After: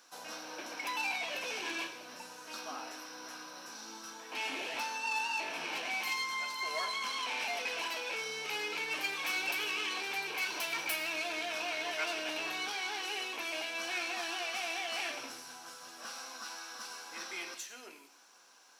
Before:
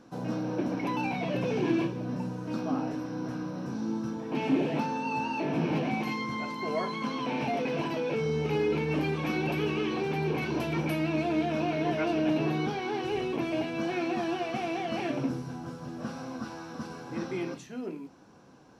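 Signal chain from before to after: tracing distortion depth 0.031 ms; Bessel high-pass 1500 Hz, order 2; high shelf 4900 Hz +11.5 dB; on a send: reverb, pre-delay 79 ms, DRR 13 dB; on the sum: gain +2 dB

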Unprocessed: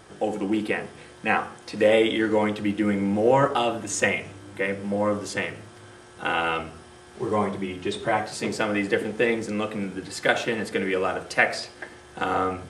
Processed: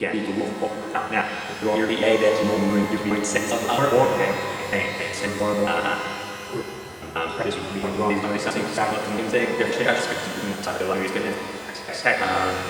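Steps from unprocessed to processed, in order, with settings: slices in reverse order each 0.135 s, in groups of 6; shimmer reverb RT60 2.8 s, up +12 st, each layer -8 dB, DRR 2.5 dB

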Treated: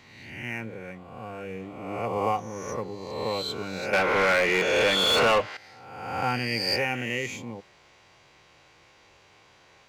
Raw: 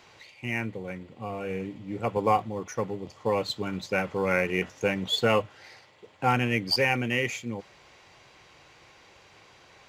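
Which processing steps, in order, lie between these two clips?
spectral swells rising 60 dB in 1.18 s; 3.93–5.57 overdrive pedal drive 23 dB, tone 3600 Hz, clips at -8.5 dBFS; gain -5 dB

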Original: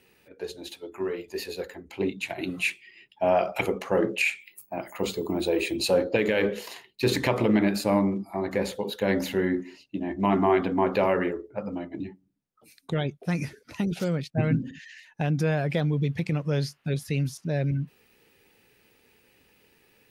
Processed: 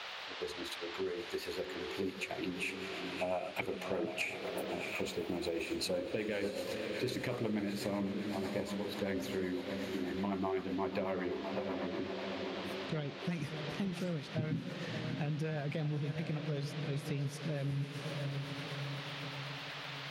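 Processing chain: diffused feedback echo 0.669 s, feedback 52%, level -8.5 dB; rotary speaker horn 8 Hz; band noise 500–4000 Hz -45 dBFS; compressor 3:1, threshold -37 dBFS, peak gain reduction 13.5 dB

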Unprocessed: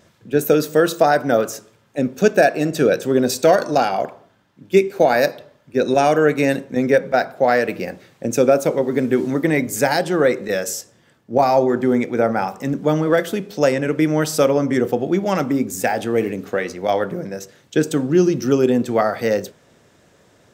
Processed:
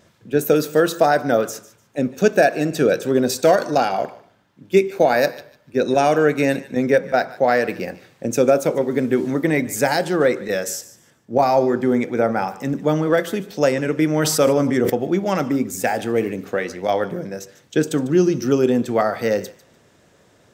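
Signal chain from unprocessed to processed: thinning echo 0.148 s, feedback 23%, high-pass 1000 Hz, level -17 dB; 14.11–14.9 sustainer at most 33 dB/s; gain -1 dB

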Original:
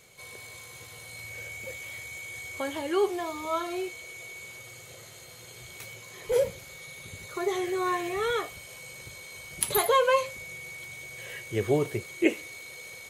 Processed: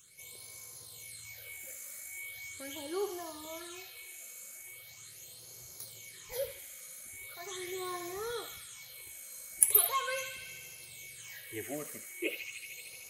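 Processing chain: phaser stages 8, 0.4 Hz, lowest notch 110–3100 Hz; pre-emphasis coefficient 0.8; narrowing echo 76 ms, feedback 84%, band-pass 2600 Hz, level -5.5 dB; gain +3 dB

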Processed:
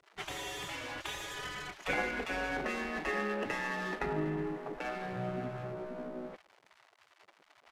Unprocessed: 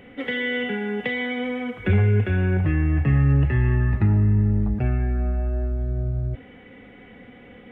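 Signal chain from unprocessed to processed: backlash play -35 dBFS; downsampling 32000 Hz; spectral gate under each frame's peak -20 dB weak; gain +2 dB

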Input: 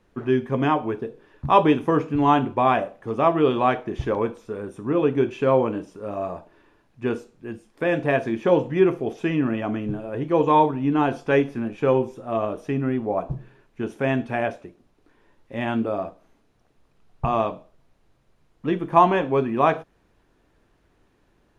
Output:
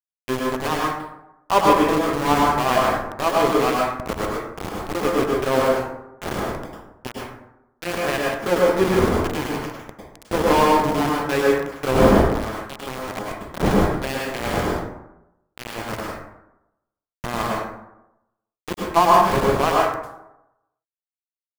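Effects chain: wind noise 440 Hz -29 dBFS; sample gate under -17 dBFS; power-law curve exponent 1.4; plate-style reverb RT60 0.89 s, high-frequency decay 0.45×, pre-delay 90 ms, DRR -3 dB; gain +1 dB

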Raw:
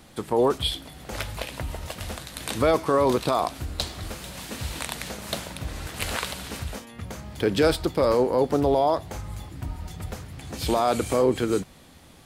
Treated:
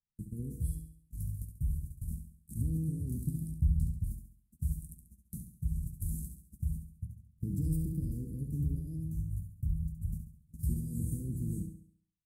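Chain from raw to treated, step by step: low shelf 200 Hz +8.5 dB; resonator 160 Hz, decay 0.9 s, harmonics all, mix 80%; in parallel at 0 dB: compressor, threshold -30 dBFS, peak gain reduction 7 dB; on the sum: gate -34 dBFS, range -44 dB; inverse Chebyshev band-stop 830–2600 Hz, stop band 80 dB; 3.51–4.04 tilt shelf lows +6 dB, about 640 Hz; on a send: flutter echo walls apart 11.8 m, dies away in 0.57 s

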